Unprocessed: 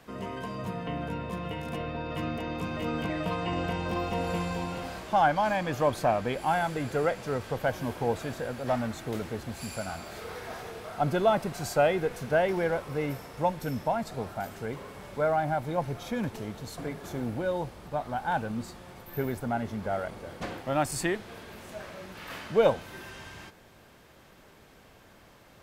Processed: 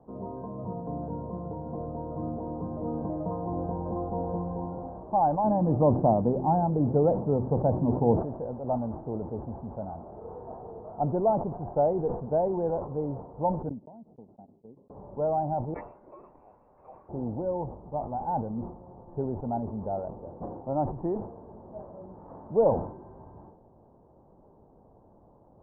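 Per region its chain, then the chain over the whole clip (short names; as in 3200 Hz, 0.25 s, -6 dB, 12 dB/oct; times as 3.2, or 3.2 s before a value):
5.44–8.21 bell 180 Hz +10.5 dB 2.4 oct + de-hum 64.28 Hz, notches 6
13.69–14.9 gate -33 dBFS, range -44 dB + band-pass 240 Hz, Q 1.3 + compressor 16:1, threshold -43 dBFS
15.74–17.09 bell 78 Hz +8.5 dB 0.96 oct + inverted band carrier 2800 Hz
whole clip: elliptic low-pass 920 Hz, stop band 70 dB; sustainer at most 94 dB/s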